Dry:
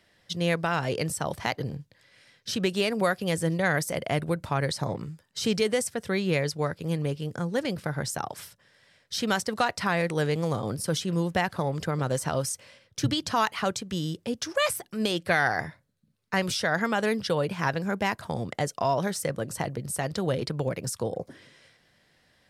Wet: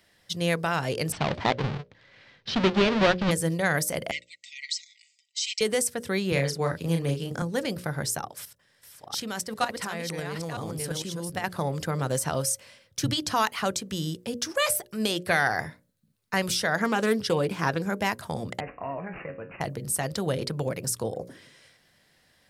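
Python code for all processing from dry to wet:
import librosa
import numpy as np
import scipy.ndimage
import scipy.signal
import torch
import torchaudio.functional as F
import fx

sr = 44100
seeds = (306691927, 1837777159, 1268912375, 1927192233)

y = fx.chain(x, sr, fx.halfwave_hold(),
    fx.lowpass(hz=4200.0, slope=24), at=(1.12, 3.31))
y = fx.chain(y, sr, fx.brickwall_bandpass(low_hz=1900.0, high_hz=8200.0),
    fx.comb(ms=5.2, depth=0.57), at=(4.11, 5.61))
y = fx.chain(y, sr, fx.high_shelf(hz=6300.0, db=-5.0),
    fx.doubler(ms=36.0, db=-4.5),
    fx.band_squash(depth_pct=40), at=(6.32, 7.42))
y = fx.chain(y, sr, fx.reverse_delay(ms=474, wet_db=-4.0),
    fx.level_steps(step_db=11), at=(8.2, 11.44))
y = fx.chain(y, sr, fx.peak_eq(hz=350.0, db=5.0, octaves=1.0),
    fx.notch(hz=600.0, q=12.0),
    fx.doppler_dist(depth_ms=0.11), at=(16.81, 17.86))
y = fx.chain(y, sr, fx.comb_fb(f0_hz=91.0, decay_s=0.32, harmonics='all', damping=0.0, mix_pct=80),
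    fx.resample_bad(factor=8, down='none', up='filtered'), at=(18.6, 19.61))
y = fx.high_shelf(y, sr, hz=8100.0, db=9.5)
y = fx.hum_notches(y, sr, base_hz=60, count=10)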